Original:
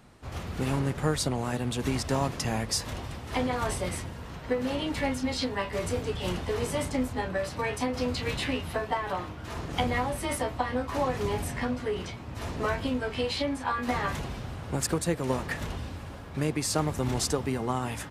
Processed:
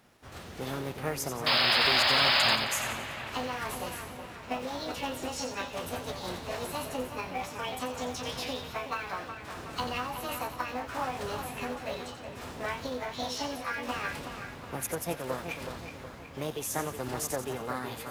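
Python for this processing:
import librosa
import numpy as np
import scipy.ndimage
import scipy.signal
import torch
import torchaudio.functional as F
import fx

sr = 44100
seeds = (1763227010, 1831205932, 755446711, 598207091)

p1 = fx.low_shelf(x, sr, hz=130.0, db=-9.5)
p2 = fx.formant_shift(p1, sr, semitones=5)
p3 = fx.spec_paint(p2, sr, seeds[0], shape='noise', start_s=1.46, length_s=1.1, low_hz=530.0, high_hz=5200.0, level_db=-20.0)
p4 = fx.quant_companded(p3, sr, bits=4)
p5 = p3 + F.gain(torch.from_numpy(p4), -11.5).numpy()
p6 = fx.echo_split(p5, sr, split_hz=2900.0, low_ms=370, high_ms=88, feedback_pct=52, wet_db=-8)
y = F.gain(torch.from_numpy(p6), -7.0).numpy()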